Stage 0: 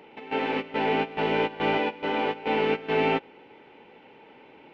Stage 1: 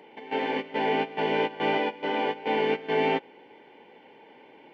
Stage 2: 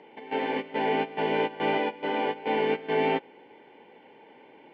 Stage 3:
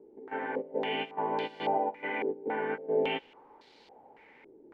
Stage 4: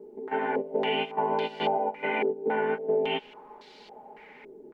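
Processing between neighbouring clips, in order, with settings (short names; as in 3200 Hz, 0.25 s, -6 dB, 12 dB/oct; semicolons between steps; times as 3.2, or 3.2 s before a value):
low shelf 93 Hz -8.5 dB; notch comb 1300 Hz
air absorption 130 m
bit-crush 9-bit; stepped low-pass 3.6 Hz 380–4200 Hz; gain -8.5 dB
comb 4.8 ms, depth 65%; compressor 6:1, threshold -29 dBFS, peak gain reduction 9.5 dB; gain +6 dB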